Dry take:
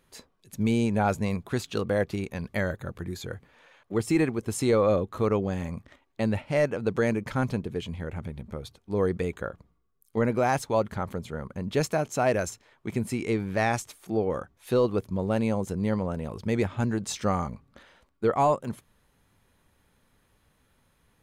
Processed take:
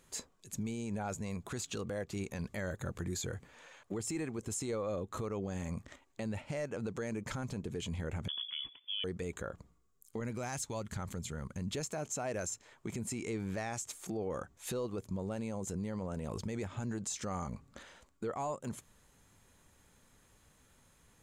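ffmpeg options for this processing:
-filter_complex "[0:a]asettb=1/sr,asplit=3[a][b][c];[a]atrim=end=8.284[d];[b]atrim=start=8.28:end=9.04,asetpts=PTS-STARTPTS,afade=t=in:d=0.004:c=qsin,afade=t=out:st=0.756:d=0.004:c=qsin,lowpass=f=3k:t=q:w=0.5098,lowpass=f=3k:t=q:w=0.6013,lowpass=f=3k:t=q:w=0.9,lowpass=f=3k:t=q:w=2.563,afreqshift=-3500[e];[c]atrim=start=9.036[f];[d][e]acrossfade=d=0.004:c1=hsin:c2=qsin[g];[g][f]acrossfade=d=0.004:c1=qsin:c2=hsin,asettb=1/sr,asplit=3[h][i][j];[h]atrim=end=10.204[k];[i]atrim=start=10.2:end=11.74,asetpts=PTS-STARTPTS,afade=t=in:d=0.004:c=qsin,afade=t=out:st=1.536:d=0.004:c=qsin,equalizer=f=600:t=o:w=2.8:g=-9[l];[j]atrim=start=11.736[m];[k][l]acrossfade=d=0.004:c1=hsin:c2=qsin[n];[n][m]acrossfade=d=0.004:c1=qsin:c2=hsin,equalizer=f=7.2k:w=2:g=12.5,acompressor=threshold=-32dB:ratio=5,alimiter=level_in=5dB:limit=-24dB:level=0:latency=1:release=20,volume=-5dB"

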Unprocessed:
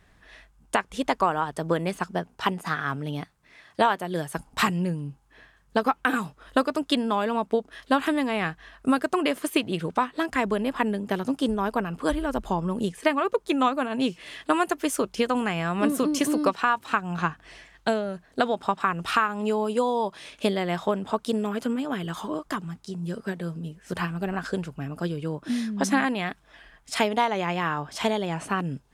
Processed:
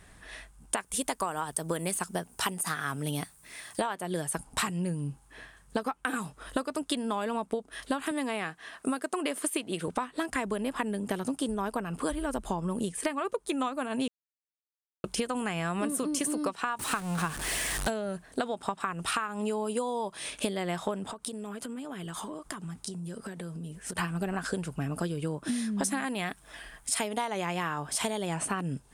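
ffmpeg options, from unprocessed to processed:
-filter_complex "[0:a]asettb=1/sr,asplit=3[a][b][c];[a]atrim=end=0.774[d];[b]atrim=start=0.77:end=3.8,asetpts=PTS-STARTPTS,afade=t=in:d=0.004:c=qsin,afade=t=out:st=3.026:d=0.004:c=qsin,aemphasis=mode=production:type=50fm[e];[c]atrim=start=3.796[f];[d][e]acrossfade=d=0.004:c1=hsin:c2=qsin[g];[g][f]acrossfade=d=0.004:c1=qsin:c2=hsin,asettb=1/sr,asplit=3[h][i][j];[h]atrim=end=8.114[k];[i]atrim=start=8.11:end=9.88,asetpts=PTS-STARTPTS,afade=t=in:d=0.004:c=qsin,afade=t=out:st=1.766:d=0.004:c=qsin,highpass=200[l];[j]atrim=start=9.876[m];[k][l]acrossfade=d=0.004:c1=hsin:c2=qsin[n];[n][m]acrossfade=d=0.004:c1=qsin:c2=hsin,asettb=1/sr,asplit=3[o][p][q];[o]atrim=end=16.794[r];[p]atrim=start=16.79:end=17.9,asetpts=PTS-STARTPTS,afade=t=in:d=0.004:c=qsin,afade=t=out:st=1.106:d=0.004:c=qsin,aeval=exprs='val(0)+0.5*0.0335*sgn(val(0))':c=same[s];[q]atrim=start=17.896[t];[r][s]acrossfade=d=0.004:c1=hsin:c2=qsin[u];[u][t]acrossfade=d=0.004:c1=qsin:c2=hsin,asettb=1/sr,asplit=3[v][w][x];[v]atrim=end=21.114[y];[w]atrim=start=21.11:end=23.98,asetpts=PTS-STARTPTS,afade=t=in:d=0.004:c=qsin,afade=t=out:st=2.866:d=0.004:c=qsin,acompressor=threshold=-39dB:ratio=16:attack=3.2:release=140:knee=1:detection=peak[z];[x]atrim=start=23.976[aa];[y][z]acrossfade=d=0.004:c1=hsin:c2=qsin[ab];[ab][aa]acrossfade=d=0.004:c1=qsin:c2=hsin,asettb=1/sr,asplit=3[ac][ad][ae];[ac]atrim=end=25.784[af];[ad]atrim=start=25.78:end=28.36,asetpts=PTS-STARTPTS,afade=t=in:d=0.004:c=qsin,afade=t=out:st=2.576:d=0.004:c=qsin,highshelf=f=9.7k:g=9.5[ag];[ae]atrim=start=28.356[ah];[af][ag]acrossfade=d=0.004:c1=hsin:c2=qsin[ai];[ai][ah]acrossfade=d=0.004:c1=qsin:c2=hsin,asplit=3[aj][ak][al];[aj]atrim=end=14.08,asetpts=PTS-STARTPTS,afade=t=out:st=14.076:d=0.004:c=hsin[am];[ak]atrim=start=14.08:end=15.04,asetpts=PTS-STARTPTS,volume=0[an];[al]atrim=start=15.04,asetpts=PTS-STARTPTS,afade=t=in:d=0.004:c=hsin[ao];[am][an][ao]concat=n=3:v=0:a=1,equalizer=f=9.1k:w=1.8:g=13.5,acompressor=threshold=-33dB:ratio=5,volume=4dB"

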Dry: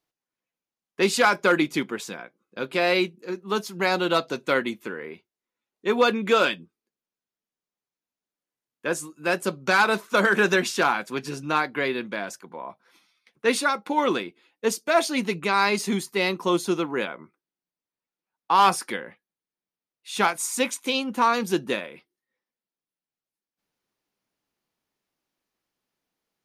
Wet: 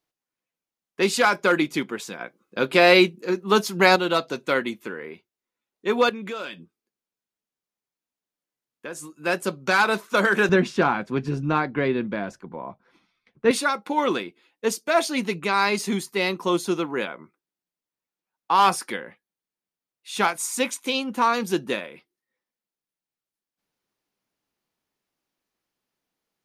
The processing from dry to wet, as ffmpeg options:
-filter_complex "[0:a]asettb=1/sr,asplit=3[a][b][c];[a]atrim=end=6.094[d];[b]atrim=start=6.09:end=9.13,asetpts=PTS-STARTPTS,afade=t=in:d=0.004:c=qsin,afade=t=out:st=3.036:d=0.004:c=qsin,acompressor=threshold=-33dB:ratio=3:attack=3.2:release=140:knee=1:detection=peak[e];[c]atrim=start=9.126[f];[d][e]acrossfade=d=0.004:c1=hsin:c2=qsin[g];[g][f]acrossfade=d=0.004:c1=qsin:c2=hsin,asettb=1/sr,asplit=3[h][i][j];[h]atrim=end=10.494[k];[i]atrim=start=10.49:end=13.51,asetpts=PTS-STARTPTS,afade=t=in:d=0.004:c=qsin,afade=t=out:st=3.016:d=0.004:c=qsin,aemphasis=mode=reproduction:type=riaa[l];[j]atrim=start=13.506[m];[k][l]acrossfade=d=0.004:c1=hsin:c2=qsin[n];[n][m]acrossfade=d=0.004:c1=qsin:c2=hsin,asplit=3[o][p][q];[o]atrim=end=2.212[r];[p]atrim=start=2.208:end=3.962,asetpts=PTS-STARTPTS,volume=7dB[s];[q]atrim=start=3.958[t];[r][s]acrossfade=d=0.004:c1=hsin:c2=hsin[u];[u][t]acrossfade=d=0.004:c1=hsin:c2=hsin"

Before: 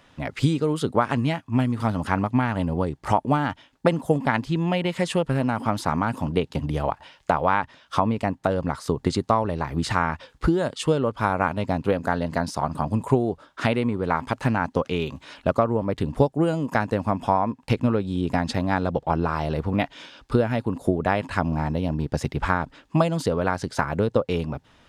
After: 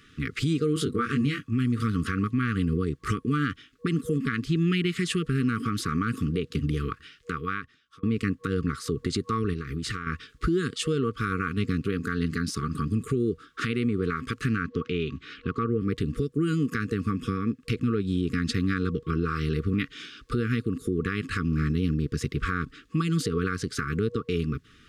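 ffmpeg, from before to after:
-filter_complex "[0:a]asettb=1/sr,asplit=3[a][b][c];[a]atrim=end=0.744[d];[b]atrim=start=0.74:end=1.51,asetpts=PTS-STARTPTS,afade=t=in:d=0.004:c=qsin,afade=t=out:st=0.766:d=0.004:c=qsin,asplit=2[e][f];[f]adelay=21,volume=-4dB[g];[e][g]amix=inputs=2:normalize=0,atrim=end_sample=33957[h];[c]atrim=start=1.506[i];[d][h]acrossfade=d=0.004:c1=hsin:c2=qsin[j];[j][i]acrossfade=d=0.004:c1=qsin:c2=hsin,asettb=1/sr,asplit=3[k][l][m];[k]atrim=end=9.534[n];[l]atrim=start=9.53:end=10.07,asetpts=PTS-STARTPTS,afade=t=in:d=0.004:c=qsin,afade=t=out:st=0.536:d=0.004:c=qsin,acompressor=threshold=-28dB:ratio=10:attack=3.2:release=140:knee=1:detection=peak[o];[m]atrim=start=10.066[p];[n][o]acrossfade=d=0.004:c1=hsin:c2=qsin[q];[q][p]acrossfade=d=0.004:c1=qsin:c2=hsin,asettb=1/sr,asplit=3[r][s][t];[r]atrim=end=14.634[u];[s]atrim=start=14.63:end=15.81,asetpts=PTS-STARTPTS,afade=t=in:d=0.004:c=qsin,afade=t=out:st=1.176:d=0.004:c=qsin,lowpass=3.9k[v];[t]atrim=start=15.806[w];[u][v]acrossfade=d=0.004:c1=hsin:c2=qsin[x];[x][w]acrossfade=d=0.004:c1=qsin:c2=hsin,asplit=2[y][z];[y]atrim=end=8.03,asetpts=PTS-STARTPTS,afade=t=out:st=6.87:d=1.16[aa];[z]atrim=start=8.03,asetpts=PTS-STARTPTS,afade=t=in:d=0.004:c=hsin[ab];[aa][ab]concat=n=2:v=0:a=1,afftfilt=real='re*(1-between(b*sr/4096,480,1100))':imag='im*(1-between(b*sr/4096,480,1100))':win_size=4096:overlap=0.75,alimiter=limit=-18.5dB:level=0:latency=1:release=100,volume=1.5dB"

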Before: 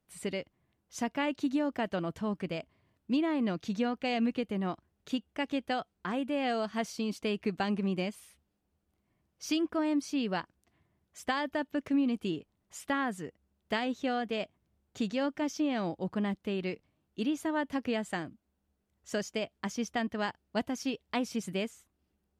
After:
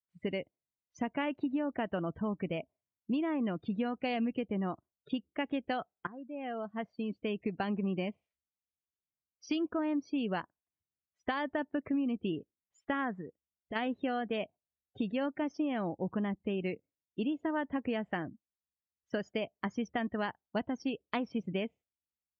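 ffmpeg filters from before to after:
-filter_complex "[0:a]asplit=3[a][b][c];[a]afade=t=out:st=13.2:d=0.02[d];[b]acompressor=threshold=-44dB:ratio=2.5:attack=3.2:release=140:knee=1:detection=peak,afade=t=in:st=13.2:d=0.02,afade=t=out:st=13.75:d=0.02[e];[c]afade=t=in:st=13.75:d=0.02[f];[d][e][f]amix=inputs=3:normalize=0,asplit=2[g][h];[g]atrim=end=6.07,asetpts=PTS-STARTPTS,afade=t=out:st=6.066:d=0.004:c=hsin:silence=0.105925[i];[h]atrim=start=6.07,asetpts=PTS-STARTPTS,afade=t=in:d=1.87:silence=0.105925[j];[i][j]concat=n=2:v=0:a=1,lowpass=3.6k,afftdn=nr=34:nf=-46,acompressor=threshold=-34dB:ratio=3,volume=3dB"

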